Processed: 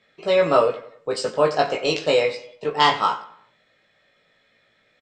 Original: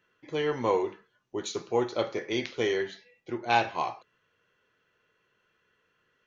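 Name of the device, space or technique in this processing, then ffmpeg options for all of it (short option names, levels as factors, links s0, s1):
nightcore: -filter_complex "[0:a]asetrate=55125,aresample=44100,lowpass=6700,asplit=2[s0][s1];[s1]adelay=18,volume=0.708[s2];[s0][s2]amix=inputs=2:normalize=0,asplit=2[s3][s4];[s4]adelay=93,lowpass=f=4600:p=1,volume=0.168,asplit=2[s5][s6];[s6]adelay=93,lowpass=f=4600:p=1,volume=0.42,asplit=2[s7][s8];[s8]adelay=93,lowpass=f=4600:p=1,volume=0.42,asplit=2[s9][s10];[s10]adelay=93,lowpass=f=4600:p=1,volume=0.42[s11];[s3][s5][s7][s9][s11]amix=inputs=5:normalize=0,volume=2.37"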